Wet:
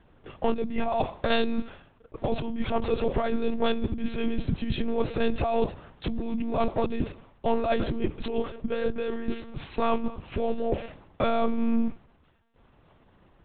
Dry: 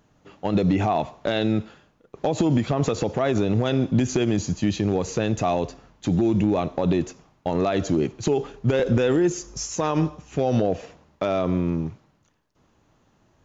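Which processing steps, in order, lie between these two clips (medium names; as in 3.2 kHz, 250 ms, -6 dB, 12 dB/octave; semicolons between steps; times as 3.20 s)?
compressor with a negative ratio -24 dBFS, ratio -0.5; monotone LPC vocoder at 8 kHz 230 Hz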